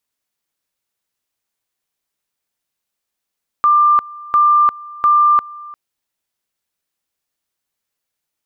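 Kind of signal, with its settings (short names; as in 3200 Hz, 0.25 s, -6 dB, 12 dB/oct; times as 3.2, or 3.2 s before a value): two-level tone 1190 Hz -8 dBFS, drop 22 dB, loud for 0.35 s, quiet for 0.35 s, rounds 3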